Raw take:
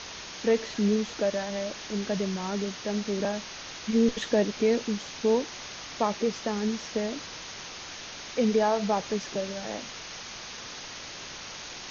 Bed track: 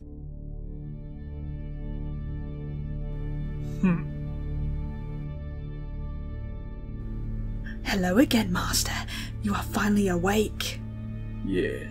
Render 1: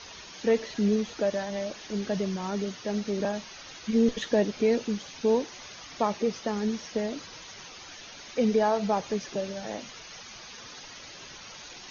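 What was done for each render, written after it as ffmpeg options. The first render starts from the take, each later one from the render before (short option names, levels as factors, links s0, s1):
-af "afftdn=nr=9:nf=-41"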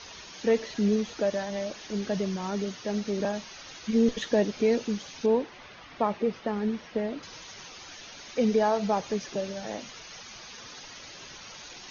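-filter_complex "[0:a]asettb=1/sr,asplit=3[s0][s1][s2];[s0]atrim=end=5.264[s3];[s1]atrim=start=5.26:end=7.23,asetpts=PTS-STARTPTS,afade=t=in:d=0.004:c=qsin,afade=t=out:st=1.966:d=0.004:c=qsin,lowpass=2800[s4];[s2]atrim=start=7.226[s5];[s3][s4]acrossfade=d=0.004:c1=hsin:c2=qsin[s6];[s6][s5]acrossfade=d=0.004:c1=qsin:c2=hsin"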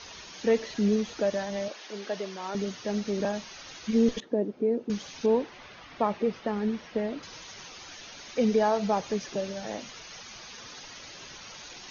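-filter_complex "[0:a]asettb=1/sr,asplit=3[s0][s1][s2];[s0]atrim=end=1.684[s3];[s1]atrim=start=1.68:end=2.55,asetpts=PTS-STARTPTS,afade=t=in:d=0.004:c=qsin,afade=t=out:st=0.866:d=0.004:c=qsin,highpass=410,lowpass=5800[s4];[s2]atrim=start=2.546[s5];[s3][s4]acrossfade=d=0.004:c1=hsin:c2=qsin[s6];[s6][s5]acrossfade=d=0.004:c1=qsin:c2=hsin,asettb=1/sr,asplit=3[s7][s8][s9];[s7]atrim=end=4.204[s10];[s8]atrim=start=4.2:end=4.9,asetpts=PTS-STARTPTS,afade=t=in:d=0.004:c=qsin,afade=t=out:st=0.696:d=0.004:c=qsin,bandpass=f=320:t=q:w=1.3[s11];[s9]atrim=start=4.896[s12];[s10][s11]acrossfade=d=0.004:c1=hsin:c2=qsin[s13];[s13][s12]acrossfade=d=0.004:c1=qsin:c2=hsin"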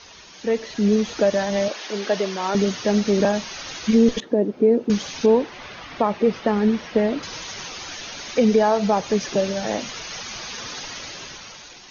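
-af "dynaudnorm=f=200:g=9:m=3.76,alimiter=limit=0.398:level=0:latency=1:release=327"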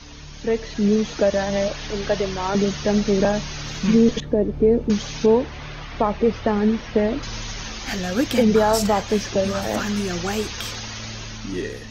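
-filter_complex "[1:a]volume=0.841[s0];[0:a][s0]amix=inputs=2:normalize=0"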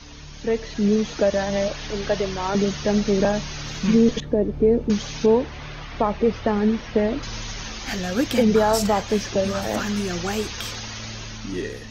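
-af "volume=0.891"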